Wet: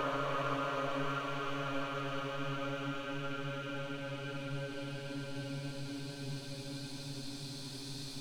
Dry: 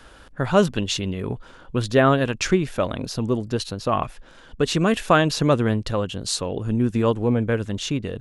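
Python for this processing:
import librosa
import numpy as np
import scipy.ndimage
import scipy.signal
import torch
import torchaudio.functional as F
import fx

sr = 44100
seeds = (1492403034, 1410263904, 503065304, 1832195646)

y = np.where(x < 0.0, 10.0 ** (-12.0 / 20.0) * x, x)
y = fx.doppler_pass(y, sr, speed_mps=43, closest_m=2.8, pass_at_s=1.93)
y = fx.paulstretch(y, sr, seeds[0], factor=50.0, window_s=0.25, from_s=5.27)
y = F.gain(torch.from_numpy(y), 18.0).numpy()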